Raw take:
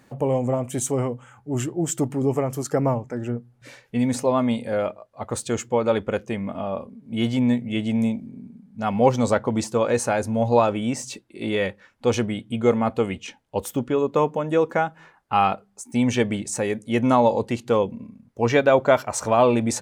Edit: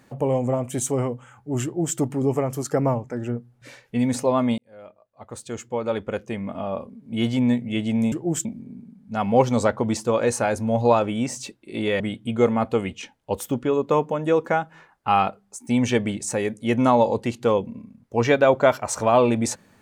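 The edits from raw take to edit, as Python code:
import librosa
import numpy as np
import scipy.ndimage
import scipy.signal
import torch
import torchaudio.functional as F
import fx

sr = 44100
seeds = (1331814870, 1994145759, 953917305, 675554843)

y = fx.edit(x, sr, fx.duplicate(start_s=1.64, length_s=0.33, to_s=8.12),
    fx.fade_in_span(start_s=4.58, length_s=2.19),
    fx.cut(start_s=11.67, length_s=0.58), tone=tone)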